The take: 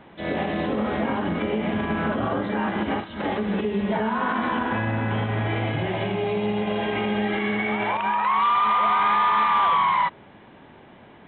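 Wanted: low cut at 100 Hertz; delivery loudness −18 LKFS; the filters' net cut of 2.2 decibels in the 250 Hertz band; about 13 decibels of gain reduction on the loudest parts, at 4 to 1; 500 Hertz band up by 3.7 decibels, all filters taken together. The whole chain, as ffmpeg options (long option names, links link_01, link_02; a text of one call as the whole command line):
ffmpeg -i in.wav -af "highpass=100,equalizer=frequency=250:width_type=o:gain=-4,equalizer=frequency=500:width_type=o:gain=6,acompressor=threshold=-33dB:ratio=4,volume=16dB" out.wav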